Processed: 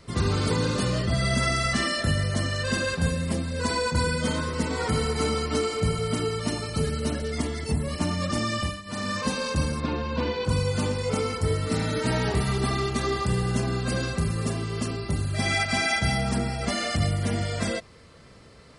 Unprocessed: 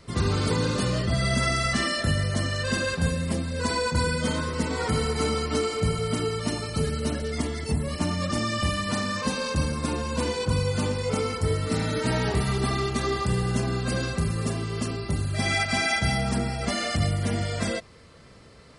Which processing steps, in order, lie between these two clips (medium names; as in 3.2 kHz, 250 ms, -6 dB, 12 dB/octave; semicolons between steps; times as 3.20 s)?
8.56–9.10 s: dip -14.5 dB, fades 0.26 s; 9.80–10.45 s: low-pass 4.3 kHz 24 dB/octave